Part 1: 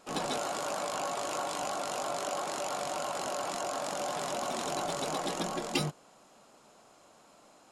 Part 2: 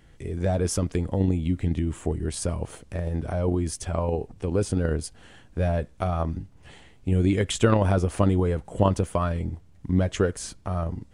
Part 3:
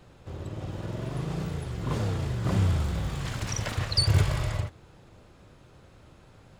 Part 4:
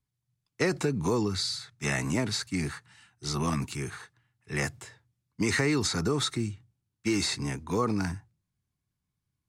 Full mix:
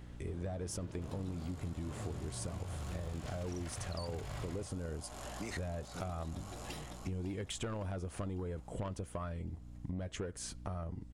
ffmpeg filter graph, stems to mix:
ffmpeg -i stem1.wav -i stem2.wav -i stem3.wav -i stem4.wav -filter_complex "[0:a]highshelf=frequency=11000:gain=11,acompressor=threshold=-43dB:ratio=2,adelay=950,volume=-8dB,asplit=2[link_01][link_02];[link_02]volume=-4.5dB[link_03];[1:a]asoftclip=type=tanh:threshold=-16.5dB,volume=-3.5dB,asplit=2[link_04][link_05];[2:a]alimiter=limit=-22dB:level=0:latency=1:release=18,volume=-6.5dB[link_06];[3:a]volume=-12dB[link_07];[link_05]apad=whole_len=418123[link_08];[link_07][link_08]sidechaincompress=threshold=-45dB:ratio=8:attack=16:release=153[link_09];[link_03]aecho=0:1:554|1108|1662|2216|2770|3324|3878|4432:1|0.53|0.281|0.149|0.0789|0.0418|0.0222|0.0117[link_10];[link_01][link_04][link_06][link_09][link_10]amix=inputs=5:normalize=0,aeval=exprs='val(0)+0.00355*(sin(2*PI*60*n/s)+sin(2*PI*2*60*n/s)/2+sin(2*PI*3*60*n/s)/3+sin(2*PI*4*60*n/s)/4+sin(2*PI*5*60*n/s)/5)':channel_layout=same,acompressor=threshold=-38dB:ratio=6" out.wav

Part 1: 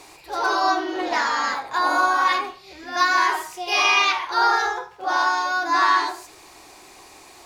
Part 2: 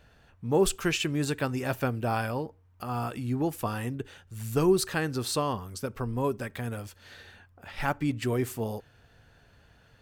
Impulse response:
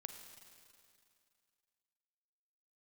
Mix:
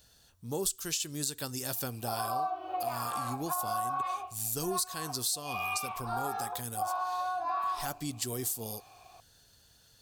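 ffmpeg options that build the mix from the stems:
-filter_complex "[0:a]asplit=3[link_01][link_02][link_03];[link_01]bandpass=frequency=730:width_type=q:width=8,volume=0dB[link_04];[link_02]bandpass=frequency=1090:width_type=q:width=8,volume=-6dB[link_05];[link_03]bandpass=frequency=2440:width_type=q:width=8,volume=-9dB[link_06];[link_04][link_05][link_06]amix=inputs=3:normalize=0,adelay=1750,volume=-0.5dB[link_07];[1:a]aexciter=amount=6.9:drive=7.1:freq=3500,volume=-8.5dB,asplit=2[link_08][link_09];[link_09]apad=whole_len=405727[link_10];[link_07][link_10]sidechaincompress=threshold=-27dB:ratio=8:attack=16:release=922[link_11];[link_11][link_08]amix=inputs=2:normalize=0,acompressor=threshold=-30dB:ratio=5"

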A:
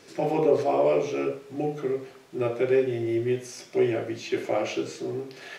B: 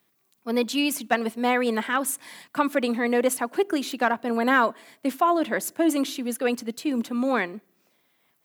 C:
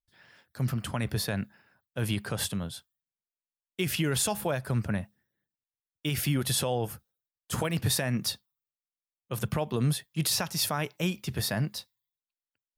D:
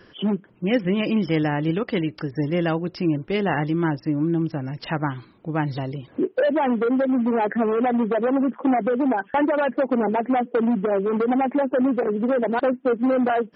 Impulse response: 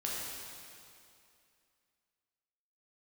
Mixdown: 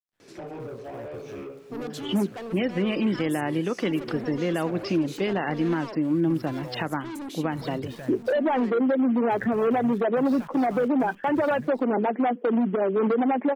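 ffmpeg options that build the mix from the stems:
-filter_complex "[0:a]equalizer=frequency=210:width=0.5:gain=5,acompressor=threshold=-27dB:ratio=12,asoftclip=type=tanh:threshold=-29.5dB,adelay=200,volume=-3.5dB[link_01];[1:a]equalizer=frequency=370:width_type=o:width=1.1:gain=11,asoftclip=type=hard:threshold=-20.5dB,adelay=1250,volume=-6.5dB[link_02];[2:a]lowpass=1800,acrusher=bits=8:dc=4:mix=0:aa=0.000001,volume=-3.5dB,afade=type=in:start_time=6.29:duration=0.43:silence=0.251189,asplit=2[link_03][link_04];[3:a]highpass=frequency=170:width=0.5412,highpass=frequency=170:width=1.3066,adelay=1900,volume=1.5dB[link_05];[link_04]apad=whole_len=427523[link_06];[link_02][link_06]sidechaincompress=threshold=-44dB:ratio=8:attack=16:release=170[link_07];[link_07][link_03]amix=inputs=2:normalize=0,asoftclip=type=tanh:threshold=-29dB,acompressor=threshold=-34dB:ratio=6,volume=0dB[link_08];[link_01][link_05][link_08]amix=inputs=3:normalize=0,alimiter=limit=-16dB:level=0:latency=1:release=209"

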